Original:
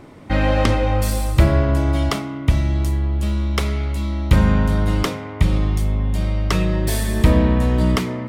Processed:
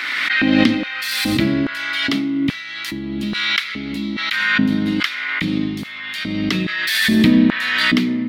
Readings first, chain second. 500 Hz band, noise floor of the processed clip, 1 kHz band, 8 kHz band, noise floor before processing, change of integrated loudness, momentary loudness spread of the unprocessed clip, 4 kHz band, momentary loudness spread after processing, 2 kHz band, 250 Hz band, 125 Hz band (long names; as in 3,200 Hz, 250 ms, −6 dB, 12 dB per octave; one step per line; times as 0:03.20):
−6.0 dB, −30 dBFS, −3.0 dB, −1.0 dB, −32 dBFS, +1.0 dB, 6 LU, +10.5 dB, 11 LU, +11.5 dB, +5.0 dB, −10.5 dB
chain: octave-band graphic EQ 125/250/500/1,000/2,000/4,000/8,000 Hz +5/+8/−9/−8/+7/+11/−8 dB
auto-filter high-pass square 1.2 Hz 260–1,500 Hz
background raised ahead of every attack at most 24 dB per second
level −4 dB